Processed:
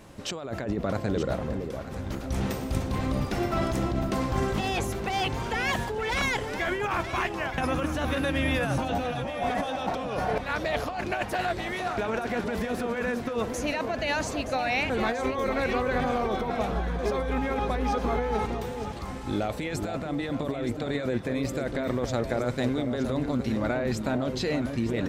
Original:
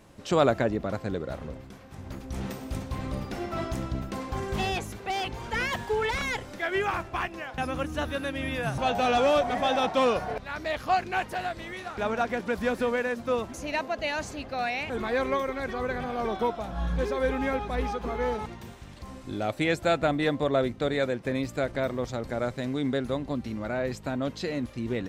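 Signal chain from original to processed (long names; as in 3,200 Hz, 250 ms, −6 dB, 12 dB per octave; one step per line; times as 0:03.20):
compressor whose output falls as the input rises −31 dBFS, ratio −1
delay that swaps between a low-pass and a high-pass 461 ms, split 930 Hz, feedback 58%, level −6 dB
level +2.5 dB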